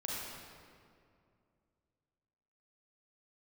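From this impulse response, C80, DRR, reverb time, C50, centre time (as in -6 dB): -1.0 dB, -5.5 dB, 2.4 s, -3.0 dB, 0.137 s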